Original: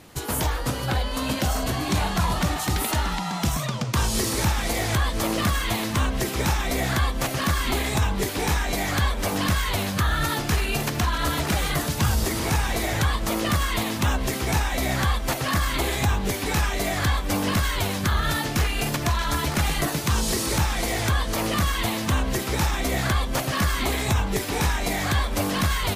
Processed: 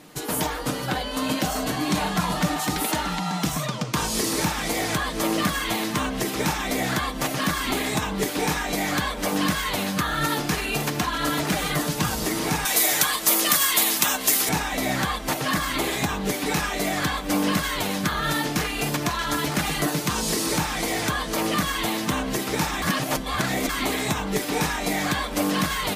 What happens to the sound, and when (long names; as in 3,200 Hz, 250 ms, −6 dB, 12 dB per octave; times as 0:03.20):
0:12.65–0:14.49: RIAA equalisation recording
0:22.82–0:23.69: reverse
whole clip: low shelf with overshoot 140 Hz −9 dB, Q 1.5; comb filter 6.6 ms, depth 40%